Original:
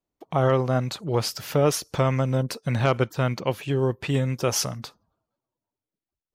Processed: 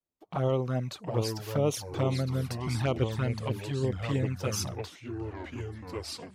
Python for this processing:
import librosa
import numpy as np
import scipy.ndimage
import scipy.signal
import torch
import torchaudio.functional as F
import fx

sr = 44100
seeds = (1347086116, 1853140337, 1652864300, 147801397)

y = fx.echo_pitch(x, sr, ms=656, semitones=-3, count=3, db_per_echo=-6.0)
y = fx.env_flanger(y, sr, rest_ms=11.6, full_db=-16.5)
y = y * librosa.db_to_amplitude(-5.5)